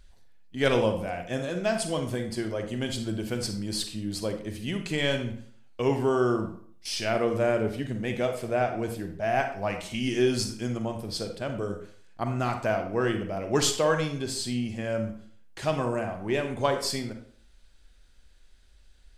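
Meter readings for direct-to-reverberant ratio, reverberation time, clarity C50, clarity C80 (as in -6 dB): 5.5 dB, 0.50 s, 7.5 dB, 11.0 dB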